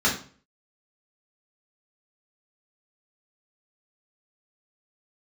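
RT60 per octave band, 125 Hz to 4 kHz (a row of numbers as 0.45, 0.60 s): 0.50, 0.50, 0.45, 0.40, 0.40, 0.35 s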